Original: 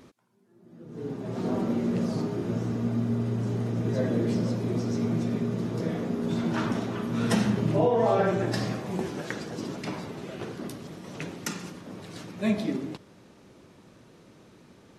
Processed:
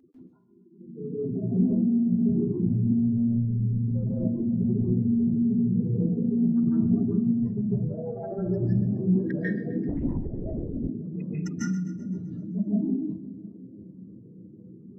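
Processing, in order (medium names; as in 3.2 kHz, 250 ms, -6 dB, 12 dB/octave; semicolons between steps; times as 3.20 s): spectral contrast enhancement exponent 3.7; 4.74–6.21 s: comb 2.1 ms, depth 31%; compressor with a negative ratio -29 dBFS, ratio -0.5; saturation -14.5 dBFS, distortion -36 dB; two-band feedback delay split 480 Hz, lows 353 ms, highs 129 ms, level -15 dB; reverberation RT60 0.30 s, pre-delay 142 ms, DRR -8 dB; 9.89–10.89 s: LPC vocoder at 8 kHz whisper; trim -7 dB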